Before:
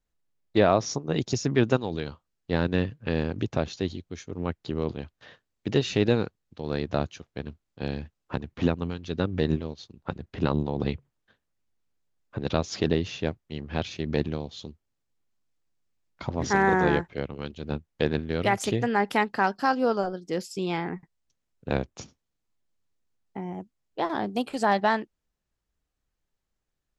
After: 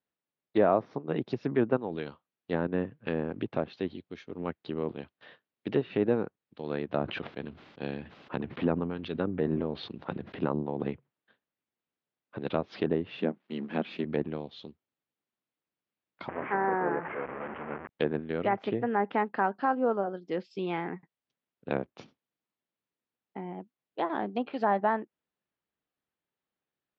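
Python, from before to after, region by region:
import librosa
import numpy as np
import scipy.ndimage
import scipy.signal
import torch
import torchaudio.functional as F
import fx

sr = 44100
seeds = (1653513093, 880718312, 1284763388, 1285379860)

y = fx.chain(x, sr, fx.lowpass(hz=6100.0, slope=12),
    fx.sustainer(db_per_s=35.0), at=(6.89, 10.43))
y = fx.chain(y, sr, fx.law_mismatch(coded='mu'),
    fx.low_shelf_res(hz=140.0, db=-12.5, q=3.0),
    fx.resample_bad(factor=4, down='none', up='hold'), at=(13.18, 14.04))
y = fx.chain(y, sr, fx.delta_mod(bps=16000, step_db=-24.0),
    fx.lowpass(hz=1900.0, slope=24),
    fx.low_shelf(hz=300.0, db=-10.5), at=(16.28, 17.89))
y = scipy.signal.sosfilt(scipy.signal.butter(4, 3800.0, 'lowpass', fs=sr, output='sos'), y)
y = fx.env_lowpass_down(y, sr, base_hz=1400.0, full_db=-21.5)
y = scipy.signal.sosfilt(scipy.signal.butter(2, 190.0, 'highpass', fs=sr, output='sos'), y)
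y = y * 10.0 ** (-2.5 / 20.0)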